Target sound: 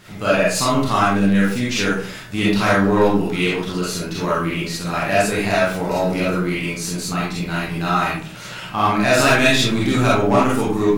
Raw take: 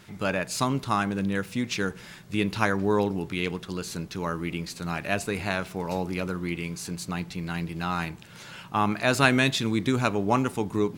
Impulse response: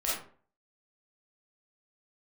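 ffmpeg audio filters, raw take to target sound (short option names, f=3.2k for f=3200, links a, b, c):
-filter_complex "[0:a]aeval=exprs='0.668*(cos(1*acos(clip(val(0)/0.668,-1,1)))-cos(1*PI/2))+0.168*(cos(5*acos(clip(val(0)/0.668,-1,1)))-cos(5*PI/2))+0.0596*(cos(6*acos(clip(val(0)/0.668,-1,1)))-cos(6*PI/2))':c=same,acontrast=63[a];[1:a]atrim=start_sample=2205[b];[a][b]afir=irnorm=-1:irlink=0,volume=-9dB"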